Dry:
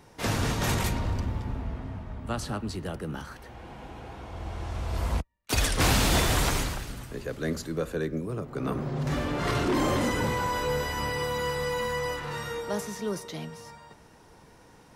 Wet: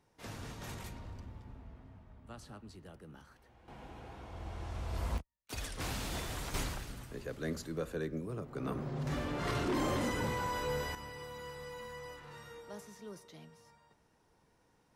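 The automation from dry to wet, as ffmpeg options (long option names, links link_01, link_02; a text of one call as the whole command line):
ffmpeg -i in.wav -af "asetnsamples=nb_out_samples=441:pad=0,asendcmd='3.68 volume volume -7.5dB;5.18 volume volume -16dB;6.54 volume volume -7.5dB;10.95 volume volume -16.5dB',volume=-18dB" out.wav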